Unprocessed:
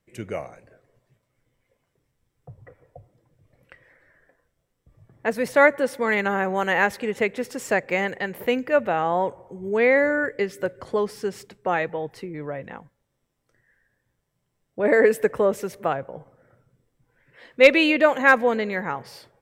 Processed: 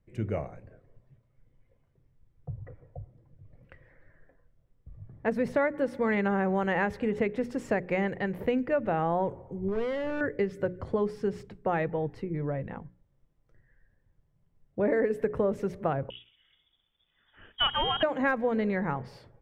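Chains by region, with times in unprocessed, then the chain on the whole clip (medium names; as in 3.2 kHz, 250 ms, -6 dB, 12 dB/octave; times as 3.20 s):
9.68–10.21 s: treble shelf 4.2 kHz -10.5 dB + compression 5:1, threshold -21 dBFS + hard clipper -26.5 dBFS
16.10–18.03 s: CVSD coder 64 kbps + frequency inversion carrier 3.5 kHz
whole clip: RIAA curve playback; hum notches 60/120/180/240/300/360/420 Hz; compression 10:1, threshold -18 dBFS; trim -4.5 dB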